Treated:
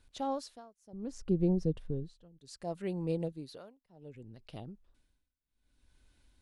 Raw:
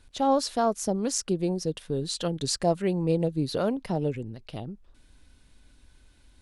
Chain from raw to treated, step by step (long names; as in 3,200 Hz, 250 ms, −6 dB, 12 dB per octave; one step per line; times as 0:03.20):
0:00.93–0:02.39: spectral tilt −4 dB per octave
amplitude tremolo 0.65 Hz, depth 97%
0:03.32–0:03.81: low-shelf EQ 290 Hz −7.5 dB
level −8.5 dB